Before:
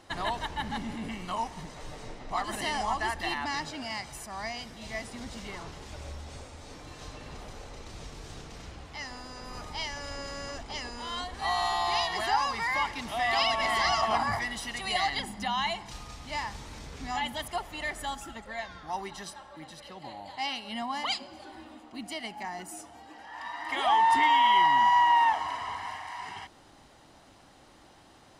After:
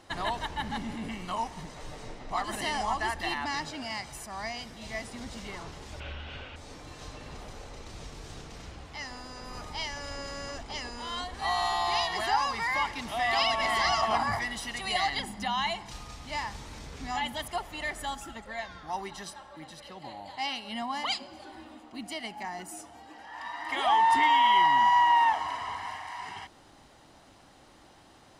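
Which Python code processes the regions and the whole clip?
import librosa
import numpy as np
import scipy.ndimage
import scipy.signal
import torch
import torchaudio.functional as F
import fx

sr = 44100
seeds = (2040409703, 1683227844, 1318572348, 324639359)

y = fx.chain(x, sr, fx.lowpass_res(hz=2900.0, q=5.0),
    fx.peak_eq(hz=1500.0, db=10.5, octaves=0.22), at=(6.0, 6.56))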